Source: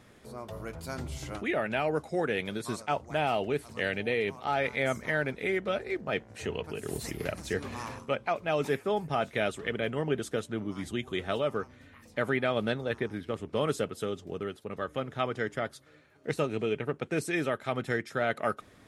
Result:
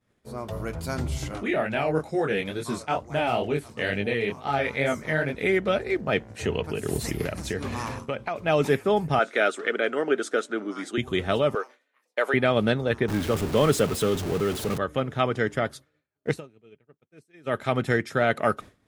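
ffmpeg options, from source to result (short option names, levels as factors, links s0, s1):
-filter_complex "[0:a]asettb=1/sr,asplit=3[s0][s1][s2];[s0]atrim=end=1.284[s3];[s1]atrim=start=1.28:end=5.35,asetpts=PTS-STARTPTS,afade=t=in:d=0.004:c=qsin,afade=t=out:st=4.066:d=0.004:c=qsin,flanger=delay=19.5:depth=6:speed=2.2[s4];[s2]atrim=start=5.346[s5];[s3][s4]acrossfade=d=0.004:c1=hsin:c2=qsin[s6];[s6][s5]acrossfade=d=0.004:c1=qsin:c2=hsin,asettb=1/sr,asplit=3[s7][s8][s9];[s7]atrim=end=7.244[s10];[s8]atrim=start=7.24:end=8.41,asetpts=PTS-STARTPTS,afade=t=in:d=0.004:c=qsin,afade=t=out:st=1.166:d=0.004:c=qsin,acompressor=threshold=0.0282:ratio=6:attack=3.2:release=140:knee=1:detection=peak[s11];[s9]atrim=start=8.406[s12];[s10][s11]acrossfade=d=0.004:c1=hsin:c2=qsin[s13];[s13][s12]acrossfade=d=0.004:c1=qsin:c2=hsin,asettb=1/sr,asplit=3[s14][s15][s16];[s14]atrim=end=9.194[s17];[s15]atrim=start=9.19:end=10.98,asetpts=PTS-STARTPTS,afade=t=in:d=0.004:c=qsin,afade=t=out:st=1.786:d=0.004:c=qsin,highpass=f=290:w=0.5412,highpass=f=290:w=1.3066,equalizer=f=970:t=q:w=4:g=-5,equalizer=f=1400:t=q:w=4:g=9,equalizer=f=2900:t=q:w=4:g=-4,lowpass=f=9400:w=0.5412,lowpass=f=9400:w=1.3066[s18];[s16]atrim=start=10.976[s19];[s17][s18]acrossfade=d=0.004:c1=hsin:c2=qsin[s20];[s20][s19]acrossfade=d=0.004:c1=qsin:c2=hsin,asettb=1/sr,asplit=3[s21][s22][s23];[s21]atrim=end=11.554[s24];[s22]atrim=start=11.55:end=12.34,asetpts=PTS-STARTPTS,afade=t=in:d=0.004:c=qsin,afade=t=out:st=0.786:d=0.004:c=qsin,highpass=f=430:w=0.5412,highpass=f=430:w=1.3066[s25];[s23]atrim=start=12.336[s26];[s24][s25]acrossfade=d=0.004:c1=hsin:c2=qsin[s27];[s27][s26]acrossfade=d=0.004:c1=qsin:c2=hsin,asettb=1/sr,asplit=3[s28][s29][s30];[s28]atrim=end=13.084[s31];[s29]atrim=start=13.08:end=14.78,asetpts=PTS-STARTPTS,afade=t=in:d=0.004:c=qsin,afade=t=out:st=1.696:d=0.004:c=qsin,aeval=exprs='val(0)+0.5*0.0188*sgn(val(0))':c=same[s32];[s30]atrim=start=14.776[s33];[s31][s32]acrossfade=d=0.004:c1=hsin:c2=qsin[s34];[s34][s33]acrossfade=d=0.004:c1=qsin:c2=hsin,asplit=3[s35][s36][s37];[s35]atrim=end=16.41,asetpts=PTS-STARTPTS,afade=t=out:st=16.29:d=0.12:silence=0.0841395[s38];[s36]atrim=start=16.41:end=17.43,asetpts=PTS-STARTPTS,volume=0.0841[s39];[s37]atrim=start=17.43,asetpts=PTS-STARTPTS,afade=t=in:d=0.12:silence=0.0841395[s40];[s38][s39][s40]concat=n=3:v=0:a=1,agate=range=0.0224:threshold=0.00708:ratio=3:detection=peak,lowshelf=f=240:g=4,volume=2"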